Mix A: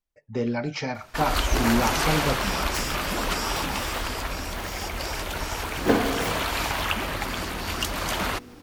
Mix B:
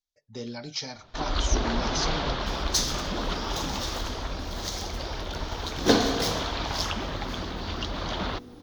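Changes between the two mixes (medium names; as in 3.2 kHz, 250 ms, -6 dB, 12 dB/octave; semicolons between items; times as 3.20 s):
speech -10.5 dB; first sound: add tape spacing loss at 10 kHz 44 dB; master: add high-order bell 4.7 kHz +15.5 dB 1.3 oct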